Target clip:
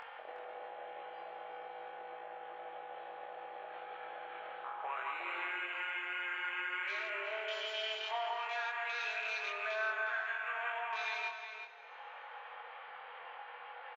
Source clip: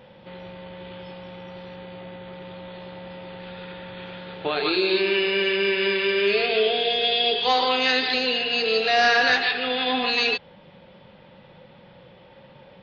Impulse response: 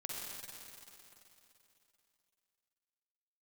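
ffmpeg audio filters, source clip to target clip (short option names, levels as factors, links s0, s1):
-filter_complex "[0:a]lowpass=1700,afwtdn=0.0158,highpass=f=980:w=0.5412,highpass=f=980:w=1.3066,acompressor=mode=upward:threshold=0.0178:ratio=2.5,alimiter=limit=0.0668:level=0:latency=1:release=290,acompressor=threshold=0.00398:ratio=2,asplit=2[s0][s1];[s1]adelay=21,volume=0.708[s2];[s0][s2]amix=inputs=2:normalize=0,asplit=2[s3][s4];[s4]adelay=332.4,volume=0.501,highshelf=f=4000:g=-7.48[s5];[s3][s5]amix=inputs=2:normalize=0,asplit=2[s6][s7];[1:a]atrim=start_sample=2205,lowshelf=f=440:g=10.5,adelay=61[s8];[s7][s8]afir=irnorm=-1:irlink=0,volume=0.224[s9];[s6][s9]amix=inputs=2:normalize=0,asetrate=40517,aresample=44100,volume=1.33"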